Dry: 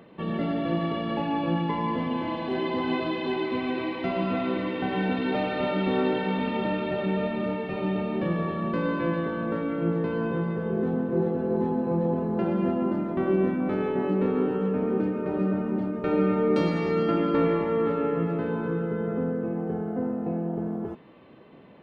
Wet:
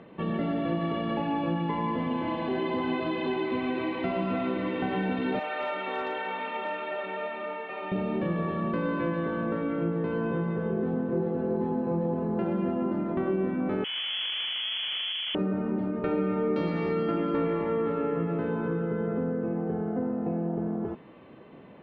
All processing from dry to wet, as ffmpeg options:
-filter_complex "[0:a]asettb=1/sr,asplit=3[s0][s1][s2];[s0]atrim=end=5.394[s3];[s1]atrim=start=5.39:end=7.92,asetpts=PTS-STARTPTS,afade=t=in:d=0.004:c=qsin,afade=t=out:st=2.526:d=0.004:c=qsin,highpass=730,lowpass=3300,volume=17.8,asoftclip=hard,volume=0.0562[s4];[s2]atrim=start=7.916[s5];[s3][s4]acrossfade=d=0.004:c1=hsin:c2=qsin[s6];[s6][s5]acrossfade=d=0.004:c1=qsin:c2=hsin,asettb=1/sr,asplit=3[s7][s8][s9];[s7]atrim=end=13.844[s10];[s8]atrim=start=13.84:end=15.35,asetpts=PTS-STARTPTS,afade=t=in:d=0.004:c=qsin,afade=t=out:st=1.506:d=0.004:c=qsin,tiltshelf=f=940:g=8.5,aeval=exprs='(tanh(35.5*val(0)+0.7)-tanh(0.7))/35.5':c=same,lowpass=f=2900:t=q:w=0.5098,lowpass=f=2900:t=q:w=0.6013,lowpass=f=2900:t=q:w=0.9,lowpass=f=2900:t=q:w=2.563,afreqshift=-3400[s11];[s9]atrim=start=15.346[s12];[s10][s11]acrossfade=d=0.004:c1=hsin:c2=qsin[s13];[s13][s12]acrossfade=d=0.004:c1=qsin:c2=hsin,lowpass=3500,acompressor=threshold=0.0398:ratio=2.5,volume=1.19"

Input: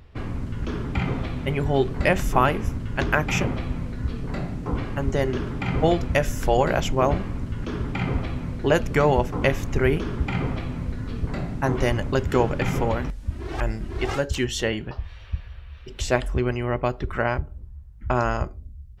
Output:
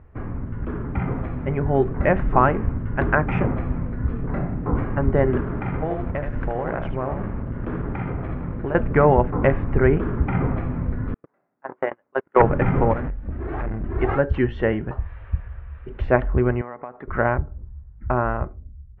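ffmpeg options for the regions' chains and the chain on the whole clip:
-filter_complex "[0:a]asettb=1/sr,asplit=3[s0][s1][s2];[s0]atrim=end=5.404[s3];[s1]atrim=start=5.4:end=8.75,asetpts=PTS-STARTPTS,afade=t=in:d=0.004:c=qsin,afade=t=out:st=3.346:d=0.004:c=qsin,acompressor=threshold=0.0631:ratio=12:attack=3.2:release=140:knee=1:detection=peak,aeval=exprs='sgn(val(0))*max(abs(val(0))-0.0106,0)':c=same,aecho=1:1:77:0.473,atrim=end_sample=147735[s4];[s2]atrim=start=8.746[s5];[s3][s4]acrossfade=d=0.004:c1=hsin:c2=qsin[s6];[s6][s5]acrossfade=d=0.004:c1=qsin:c2=hsin,asettb=1/sr,asplit=3[s7][s8][s9];[s7]atrim=end=11.144[s10];[s8]atrim=start=11.14:end=12.42,asetpts=PTS-STARTPTS,afade=t=in:d=0.004:c=qsin,afade=t=out:st=1.276:d=0.004:c=qsin,agate=range=0.00398:threshold=0.126:ratio=16:release=100:detection=peak,highpass=470,lowpass=4900,aeval=exprs='0.299*sin(PI/2*2.24*val(0)/0.299)':c=same[s11];[s9]atrim=start=12.416[s12];[s10][s11]acrossfade=d=0.004:c1=hsin:c2=qsin[s13];[s13][s12]acrossfade=d=0.004:c1=qsin:c2=hsin,asettb=1/sr,asplit=3[s14][s15][s16];[s14]atrim=end=12.934[s17];[s15]atrim=start=12.93:end=13.84,asetpts=PTS-STARTPTS,afade=t=in:d=0.004:c=qsin,afade=t=out:st=0.906:d=0.004:c=qsin,bandreject=f=970:w=13,asoftclip=type=hard:threshold=0.0376[s18];[s16]atrim=start=13.836[s19];[s17][s18]acrossfade=d=0.004:c1=hsin:c2=qsin[s20];[s20][s19]acrossfade=d=0.004:c1=qsin:c2=hsin,asettb=1/sr,asplit=3[s21][s22][s23];[s21]atrim=end=16.614[s24];[s22]atrim=start=16.61:end=17.08,asetpts=PTS-STARTPTS,afade=t=in:d=0.004:c=qsin,afade=t=out:st=0.466:d=0.004:c=qsin,highpass=350,equalizer=f=360:t=q:w=4:g=-9,equalizer=f=570:t=q:w=4:g=-5,equalizer=f=1500:t=q:w=4:g=-3,equalizer=f=2800:t=q:w=4:g=-10,lowpass=f=3800:w=0.5412,lowpass=f=3800:w=1.3066,acompressor=threshold=0.0224:ratio=6:attack=3.2:release=140:knee=1:detection=peak[s25];[s23]atrim=start=17.076[s26];[s24][s25]acrossfade=d=0.004:c1=hsin:c2=qsin[s27];[s27][s26]acrossfade=d=0.004:c1=qsin:c2=hsin,lowpass=f=1800:w=0.5412,lowpass=f=1800:w=1.3066,dynaudnorm=f=260:g=13:m=1.88"

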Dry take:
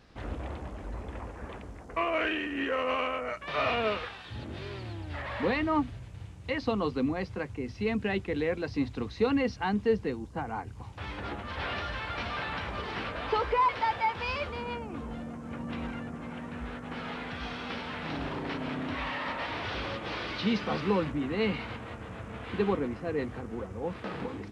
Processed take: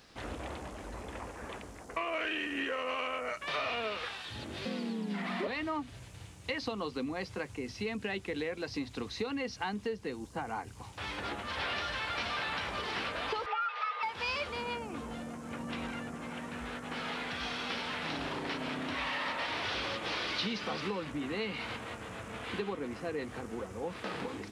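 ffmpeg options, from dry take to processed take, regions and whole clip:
-filter_complex "[0:a]asettb=1/sr,asplit=3[s0][s1][s2];[s0]atrim=end=4.654[s3];[s1]atrim=start=4.65:end=5.47,asetpts=PTS-STARTPTS,afade=t=in:d=0.004:c=qsin,afade=t=out:st=0.816:d=0.004:c=qsin,lowshelf=f=260:g=12,afreqshift=120[s4];[s2]atrim=start=5.466[s5];[s3][s4]acrossfade=d=0.004:c1=hsin:c2=qsin[s6];[s6][s5]acrossfade=d=0.004:c1=qsin:c2=hsin,asettb=1/sr,asplit=3[s7][s8][s9];[s7]atrim=end=13.464[s10];[s8]atrim=start=13.46:end=14.03,asetpts=PTS-STARTPTS,afade=t=in:d=0.004:c=qsin,afade=t=out:st=0.566:d=0.004:c=qsin,aeval=exprs='val(0)+0.0224*sin(2*PI*840*n/s)':c=same,afreqshift=380,highpass=400,lowpass=2900[s11];[s9]atrim=start=14.026[s12];[s10][s11]acrossfade=d=0.004:c1=hsin:c2=qsin[s13];[s13][s12]acrossfade=d=0.004:c1=qsin:c2=hsin,lowshelf=f=160:g=-9,acompressor=threshold=0.0224:ratio=6,highshelf=f=4100:g=12"

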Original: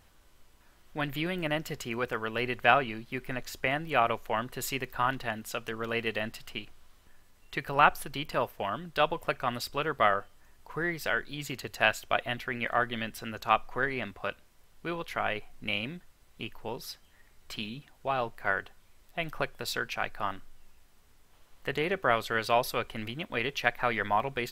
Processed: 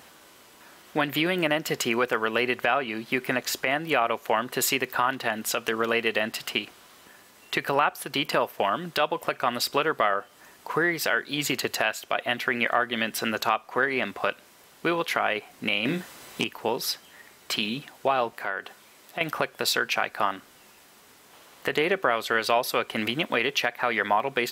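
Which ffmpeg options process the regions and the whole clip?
-filter_complex "[0:a]asettb=1/sr,asplit=3[s0][s1][s2];[s0]atrim=end=15.854[s3];[s1]atrim=start=15.85:end=16.44,asetpts=PTS-STARTPTS,afade=t=in:d=0.004:c=qsin,afade=t=out:st=0.586:d=0.004:c=qsin,aeval=exprs='0.0668*sin(PI/2*1.58*val(0)/0.0668)':c=same,asplit=2[s4][s5];[s5]adelay=32,volume=0.355[s6];[s4][s6]amix=inputs=2:normalize=0,atrim=end_sample=26019[s7];[s2]atrim=start=16.436[s8];[s3][s7]acrossfade=d=0.004:c1=hsin:c2=qsin[s9];[s9][s8]acrossfade=d=0.004:c1=qsin:c2=hsin,asettb=1/sr,asplit=3[s10][s11][s12];[s10]atrim=end=18.324[s13];[s11]atrim=start=18.32:end=19.21,asetpts=PTS-STARTPTS,afade=t=in:d=0.004:c=qsin,afade=t=out:st=0.886:d=0.004:c=qsin,highpass=110,acompressor=threshold=0.00501:ratio=2.5:attack=3.2:release=140:knee=1:detection=peak[s14];[s12]atrim=start=19.206[s15];[s13][s14]acrossfade=d=0.004:c1=hsin:c2=qsin[s16];[s16][s15]acrossfade=d=0.004:c1=qsin:c2=hsin,highpass=230,acompressor=threshold=0.0158:ratio=3,alimiter=level_in=12.6:limit=0.891:release=50:level=0:latency=1,volume=0.398"

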